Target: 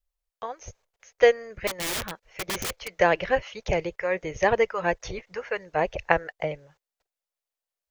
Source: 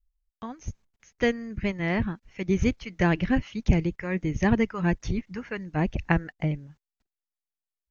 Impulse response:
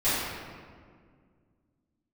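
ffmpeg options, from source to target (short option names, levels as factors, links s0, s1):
-filter_complex "[0:a]lowshelf=f=360:t=q:w=3:g=-12.5,asettb=1/sr,asplit=3[s0][s1][s2];[s0]atrim=end=1.674[s3];[s1]atrim=start=1.67:end=2.99,asetpts=PTS-STARTPTS,afade=t=in:d=0.004:c=qsin,afade=t=out:st=1.316:d=0.004:c=qsin,aeval=exprs='(mod(25.1*val(0)+1,2)-1)/25.1':c=same[s4];[s2]atrim=start=2.986[s5];[s3][s4]acrossfade=d=0.004:c1=hsin:c2=qsin[s6];[s6][s5]acrossfade=d=0.004:c1=qsin:c2=hsin,volume=1.5"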